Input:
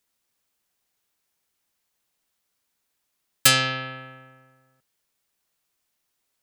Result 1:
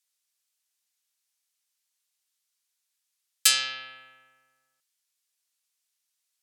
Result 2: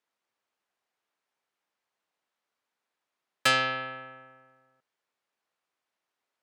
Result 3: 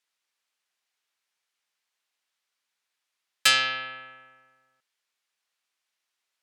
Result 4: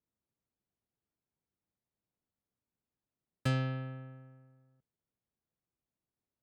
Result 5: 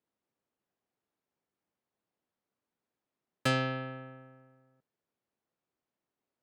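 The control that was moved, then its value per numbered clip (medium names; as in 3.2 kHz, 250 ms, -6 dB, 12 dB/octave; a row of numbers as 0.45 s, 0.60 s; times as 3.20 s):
band-pass filter, frequency: 7.1 kHz, 890 Hz, 2.4 kHz, 110 Hz, 290 Hz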